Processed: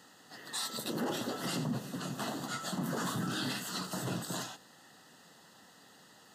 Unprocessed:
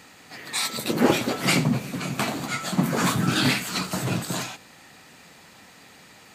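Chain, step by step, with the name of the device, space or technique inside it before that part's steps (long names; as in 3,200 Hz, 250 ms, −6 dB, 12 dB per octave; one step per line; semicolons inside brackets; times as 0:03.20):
PA system with an anti-feedback notch (high-pass filter 130 Hz 12 dB per octave; Butterworth band-reject 2,300 Hz, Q 3.1; brickwall limiter −18 dBFS, peak gain reduction 11.5 dB)
level −8 dB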